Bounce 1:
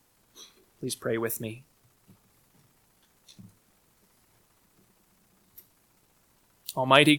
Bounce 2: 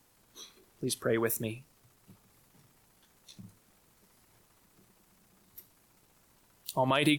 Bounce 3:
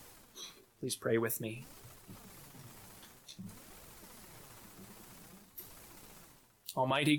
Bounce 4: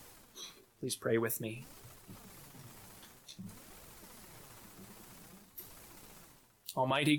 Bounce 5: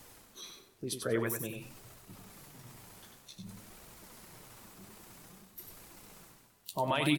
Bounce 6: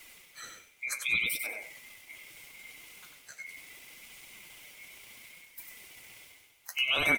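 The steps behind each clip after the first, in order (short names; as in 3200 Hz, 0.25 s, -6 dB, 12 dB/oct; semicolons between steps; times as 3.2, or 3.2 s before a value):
limiter -15 dBFS, peak gain reduction 11 dB
flange 0.52 Hz, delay 1.4 ms, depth 9.3 ms, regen +48%; reverse; upward compressor, threshold -40 dBFS; reverse
nothing audible
feedback echo 95 ms, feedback 23%, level -6 dB
band-swap scrambler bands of 2000 Hz; flange 0.71 Hz, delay 2.7 ms, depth 8.8 ms, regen +63%; gain +6.5 dB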